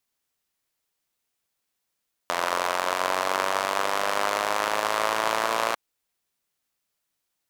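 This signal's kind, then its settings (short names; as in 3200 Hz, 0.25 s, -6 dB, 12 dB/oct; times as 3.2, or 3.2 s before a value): four-cylinder engine model, changing speed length 3.45 s, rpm 2600, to 3400, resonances 650/1000 Hz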